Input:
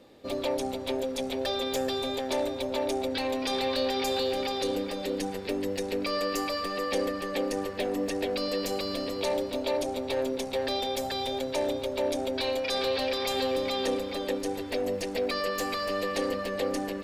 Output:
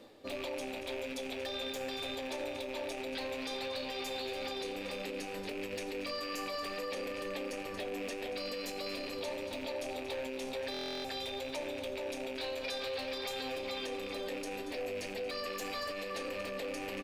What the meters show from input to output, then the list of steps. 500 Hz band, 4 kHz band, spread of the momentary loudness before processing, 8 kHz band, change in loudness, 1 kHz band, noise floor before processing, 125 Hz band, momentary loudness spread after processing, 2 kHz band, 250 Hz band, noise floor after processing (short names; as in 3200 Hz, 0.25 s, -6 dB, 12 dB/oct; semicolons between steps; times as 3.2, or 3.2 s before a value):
-9.5 dB, -7.0 dB, 4 LU, -8.0 dB, -8.5 dB, -9.5 dB, -36 dBFS, -10.0 dB, 2 LU, -4.5 dB, -10.5 dB, -42 dBFS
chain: rattling part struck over -39 dBFS, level -25 dBFS; echo 0.232 s -15 dB; flange 0.52 Hz, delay 8.4 ms, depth 8.9 ms, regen -52%; in parallel at -10.5 dB: hard clip -29.5 dBFS, distortion -15 dB; on the sum: shoebox room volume 61 m³, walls mixed, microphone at 0.31 m; limiter -28 dBFS, peak gain reduction 9.5 dB; reverse; upward compressor, threshold -40 dBFS; reverse; low shelf 320 Hz -5.5 dB; stuck buffer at 10.72, samples 1024, times 13; gain -1.5 dB